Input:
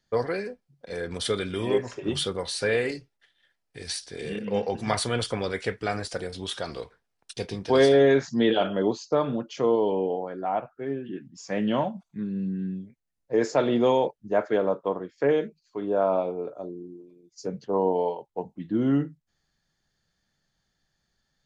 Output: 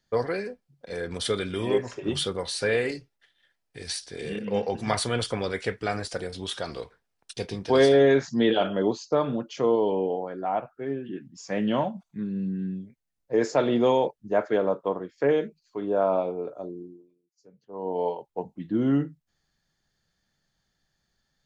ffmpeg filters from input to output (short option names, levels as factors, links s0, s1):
-filter_complex "[0:a]asplit=3[s0][s1][s2];[s0]atrim=end=17.32,asetpts=PTS-STARTPTS,afade=t=out:st=16.82:d=0.5:c=qua:silence=0.0707946[s3];[s1]atrim=start=17.32:end=17.56,asetpts=PTS-STARTPTS,volume=0.0708[s4];[s2]atrim=start=17.56,asetpts=PTS-STARTPTS,afade=t=in:d=0.5:c=qua:silence=0.0707946[s5];[s3][s4][s5]concat=n=3:v=0:a=1"